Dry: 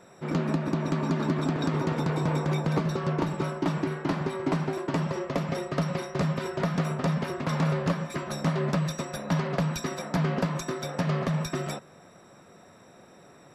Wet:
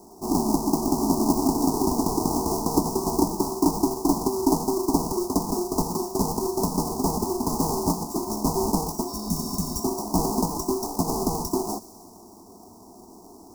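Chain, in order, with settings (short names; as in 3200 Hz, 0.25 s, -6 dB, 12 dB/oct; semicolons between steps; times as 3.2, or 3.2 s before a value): half-waves squared off; spectral repair 9.11–9.75, 270–5500 Hz after; elliptic band-stop 970–5200 Hz, stop band 40 dB; fixed phaser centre 540 Hz, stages 6; thin delay 62 ms, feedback 81%, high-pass 1900 Hz, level -16.5 dB; gain +5.5 dB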